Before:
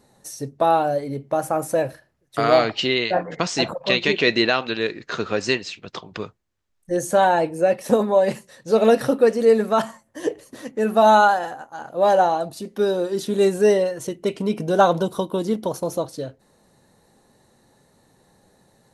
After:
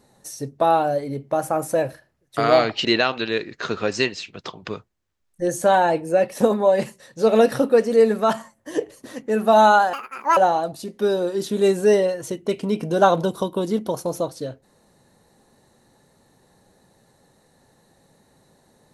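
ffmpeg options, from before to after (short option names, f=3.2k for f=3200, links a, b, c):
-filter_complex "[0:a]asplit=4[a][b][c][d];[a]atrim=end=2.852[e];[b]atrim=start=4.338:end=11.424[f];[c]atrim=start=11.42:end=12.14,asetpts=PTS-STARTPTS,asetrate=72324,aresample=44100[g];[d]atrim=start=12.136[h];[e][f]acrossfade=d=0.004:c1=hsin:c2=hsin[i];[i][g]acrossfade=d=0.004:c1=hsin:c2=hsin[j];[j][h]acrossfade=d=0.004:c1=hsin:c2=hsin"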